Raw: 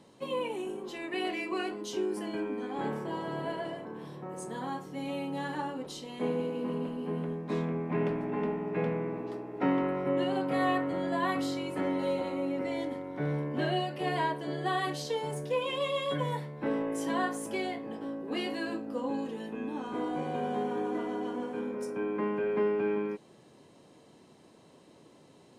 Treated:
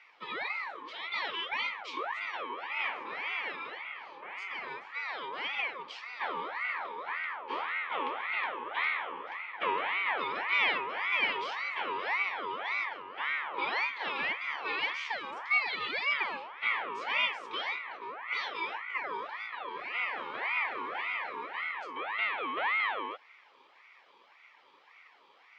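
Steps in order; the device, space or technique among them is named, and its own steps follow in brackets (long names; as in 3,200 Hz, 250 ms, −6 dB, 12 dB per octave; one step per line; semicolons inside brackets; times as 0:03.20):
voice changer toy (ring modulator whose carrier an LFO sweeps 1,200 Hz, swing 45%, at 1.8 Hz; loudspeaker in its box 460–4,700 Hz, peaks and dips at 630 Hz −5 dB, 930 Hz +3 dB, 1,500 Hz −7 dB, 2,300 Hz +9 dB, 3,200 Hz +7 dB)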